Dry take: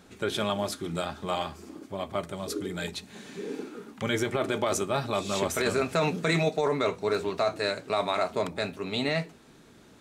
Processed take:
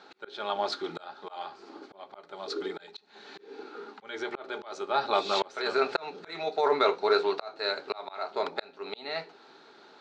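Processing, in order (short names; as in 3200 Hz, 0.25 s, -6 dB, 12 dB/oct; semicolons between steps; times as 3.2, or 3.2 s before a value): speaker cabinet 390–5200 Hz, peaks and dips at 400 Hz +7 dB, 830 Hz +10 dB, 1400 Hz +8 dB, 4200 Hz +9 dB; notches 60/120/180/240/300/360/420/480/540 Hz; auto swell 0.497 s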